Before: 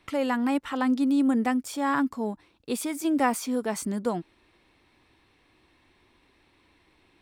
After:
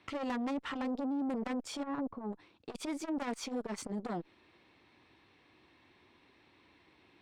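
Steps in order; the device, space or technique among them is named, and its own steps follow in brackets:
valve radio (band-pass filter 92–5,500 Hz; tube saturation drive 29 dB, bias 0.35; saturating transformer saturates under 400 Hz)
0:01.83–0:02.33: Bessel low-pass filter 910 Hz, order 2

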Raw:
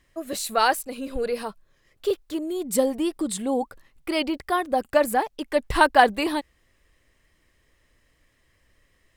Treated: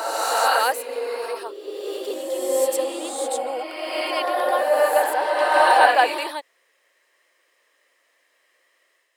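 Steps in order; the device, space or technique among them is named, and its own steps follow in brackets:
ghost voice (reversed playback; convolution reverb RT60 2.4 s, pre-delay 87 ms, DRR −4.5 dB; reversed playback; high-pass filter 460 Hz 24 dB per octave)
level −1.5 dB

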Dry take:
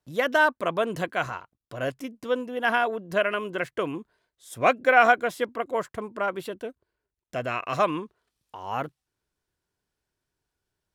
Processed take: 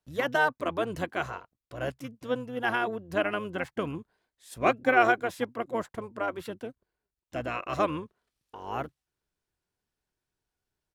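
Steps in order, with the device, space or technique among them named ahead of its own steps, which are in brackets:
octave pedal (pitch-shifted copies added −12 semitones −7 dB)
level −4.5 dB

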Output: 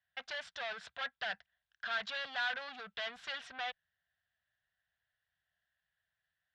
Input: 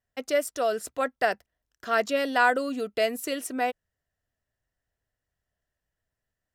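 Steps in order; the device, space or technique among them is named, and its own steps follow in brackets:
scooped metal amplifier (tube saturation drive 35 dB, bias 0.3; loudspeaker in its box 99–4,000 Hz, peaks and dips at 180 Hz +9 dB, 370 Hz −4 dB, 740 Hz +6 dB, 1,600 Hz +10 dB, 3,500 Hz +6 dB; guitar amp tone stack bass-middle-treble 10-0-10)
level +4 dB

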